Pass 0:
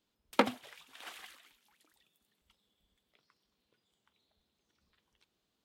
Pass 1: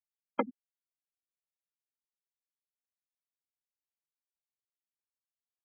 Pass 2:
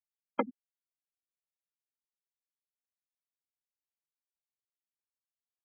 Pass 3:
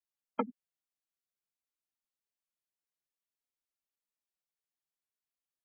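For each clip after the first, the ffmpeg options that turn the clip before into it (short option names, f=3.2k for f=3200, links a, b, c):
-af "bandreject=f=57.28:t=h:w=4,bandreject=f=114.56:t=h:w=4,bandreject=f=171.84:t=h:w=4,bandreject=f=229.12:t=h:w=4,bandreject=f=286.4:t=h:w=4,bandreject=f=343.68:t=h:w=4,bandreject=f=400.96:t=h:w=4,bandreject=f=458.24:t=h:w=4,bandreject=f=515.52:t=h:w=4,bandreject=f=572.8:t=h:w=4,bandreject=f=630.08:t=h:w=4,bandreject=f=687.36:t=h:w=4,bandreject=f=744.64:t=h:w=4,bandreject=f=801.92:t=h:w=4,bandreject=f=859.2:t=h:w=4,bandreject=f=916.48:t=h:w=4,bandreject=f=973.76:t=h:w=4,bandreject=f=1.03104k:t=h:w=4,bandreject=f=1.08832k:t=h:w=4,bandreject=f=1.1456k:t=h:w=4,bandreject=f=1.20288k:t=h:w=4,bandreject=f=1.26016k:t=h:w=4,bandreject=f=1.31744k:t=h:w=4,bandreject=f=1.37472k:t=h:w=4,bandreject=f=1.432k:t=h:w=4,bandreject=f=1.48928k:t=h:w=4,bandreject=f=1.54656k:t=h:w=4,afftfilt=real='re*gte(hypot(re,im),0.112)':imag='im*gte(hypot(re,im),0.112)':win_size=1024:overlap=0.75,volume=-2.5dB"
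-af anull
-af "flanger=delay=2.8:depth=4.1:regen=4:speed=0.53:shape=triangular,volume=1dB"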